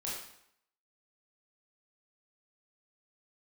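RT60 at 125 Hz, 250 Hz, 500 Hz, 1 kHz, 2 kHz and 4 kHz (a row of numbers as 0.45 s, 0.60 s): 0.65 s, 0.70 s, 0.70 s, 0.75 s, 0.70 s, 0.65 s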